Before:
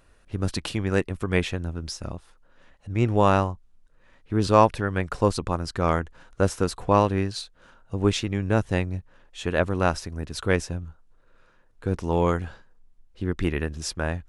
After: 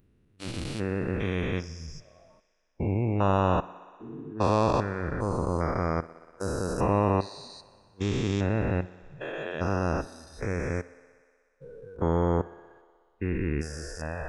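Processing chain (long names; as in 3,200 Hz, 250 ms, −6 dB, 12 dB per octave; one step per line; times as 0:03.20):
spectrum averaged block by block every 400 ms
noise reduction from a noise print of the clip's start 20 dB
feedback echo with a high-pass in the loop 61 ms, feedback 82%, high-pass 160 Hz, level −20.5 dB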